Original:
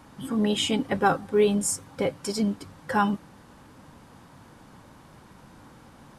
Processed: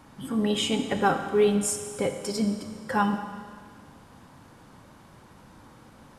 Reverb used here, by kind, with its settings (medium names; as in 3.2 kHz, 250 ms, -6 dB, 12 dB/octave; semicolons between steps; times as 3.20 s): Schroeder reverb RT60 1.9 s, combs from 28 ms, DRR 7 dB; trim -1.5 dB